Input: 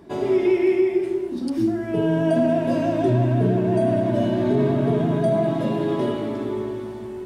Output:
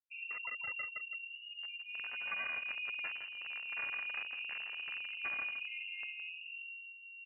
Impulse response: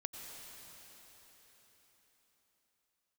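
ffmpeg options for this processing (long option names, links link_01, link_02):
-af "afftfilt=real='re*gte(hypot(re,im),0.158)':imag='im*gte(hypot(re,im),0.158)':win_size=1024:overlap=0.75,equalizer=frequency=99:width=0.44:gain=-8.5,aeval=exprs='0.141*(abs(mod(val(0)/0.141+3,4)-2)-1)':channel_layout=same,acompressor=threshold=-24dB:ratio=8,aderivative,afreqshift=-18,aecho=1:1:165:0.316,lowpass=frequency=2600:width_type=q:width=0.5098,lowpass=frequency=2600:width_type=q:width=0.6013,lowpass=frequency=2600:width_type=q:width=0.9,lowpass=frequency=2600:width_type=q:width=2.563,afreqshift=-3100,volume=8.5dB"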